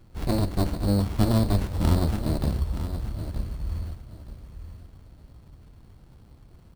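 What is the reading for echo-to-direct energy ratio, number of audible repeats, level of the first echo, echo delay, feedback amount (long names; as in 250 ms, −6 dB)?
−10.5 dB, 2, −11.0 dB, 923 ms, 24%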